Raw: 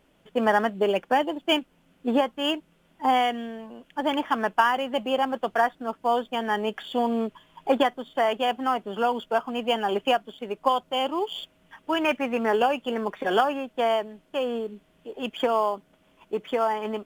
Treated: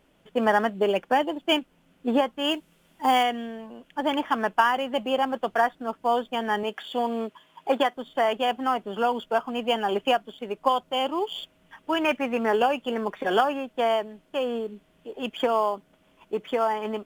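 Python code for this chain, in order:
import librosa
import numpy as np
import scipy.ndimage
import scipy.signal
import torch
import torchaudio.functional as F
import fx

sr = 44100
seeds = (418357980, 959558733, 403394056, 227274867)

y = fx.high_shelf(x, sr, hz=3600.0, db=9.5, at=(2.51, 3.23))
y = fx.highpass(y, sr, hz=320.0, slope=6, at=(6.63, 7.97))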